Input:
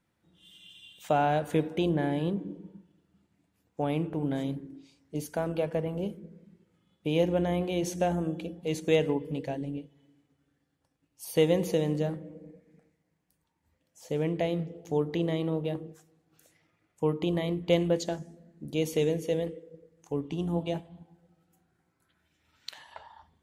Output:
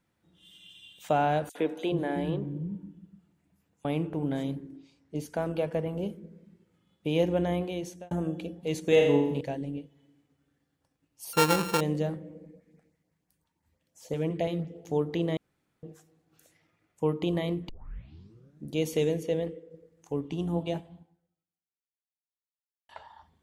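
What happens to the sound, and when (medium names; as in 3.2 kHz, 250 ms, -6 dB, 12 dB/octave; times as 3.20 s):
1.49–3.85 s: three bands offset in time highs, mids, lows 60/380 ms, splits 220/4400 Hz
4.76–5.39 s: low-pass 3.3 kHz -> 6.3 kHz 6 dB/octave
7.53–8.11 s: fade out
8.86–9.41 s: flutter echo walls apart 7.2 m, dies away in 0.75 s
11.33–11.81 s: sorted samples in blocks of 32 samples
12.44–14.76 s: LFO notch saw up 5.9 Hz 240–3800 Hz
15.37–15.83 s: room tone
17.69 s: tape start 0.97 s
19.23–19.71 s: treble shelf 5.8 kHz -8.5 dB
20.93–22.89 s: fade out exponential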